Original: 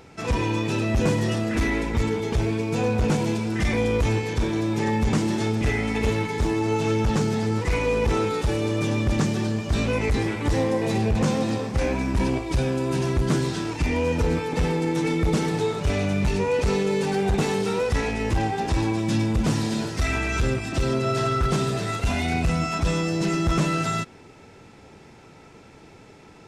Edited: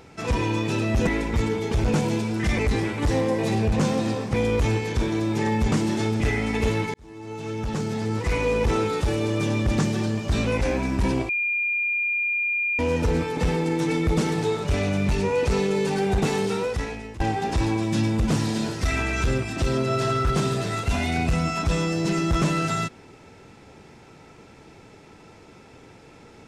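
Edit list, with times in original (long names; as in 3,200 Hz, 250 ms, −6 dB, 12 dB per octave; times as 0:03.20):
0:01.07–0:01.68: remove
0:02.45–0:03.00: remove
0:06.35–0:07.83: fade in
0:10.02–0:11.77: move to 0:03.75
0:12.45–0:13.95: beep over 2,410 Hz −21.5 dBFS
0:17.63–0:18.36: fade out, to −18.5 dB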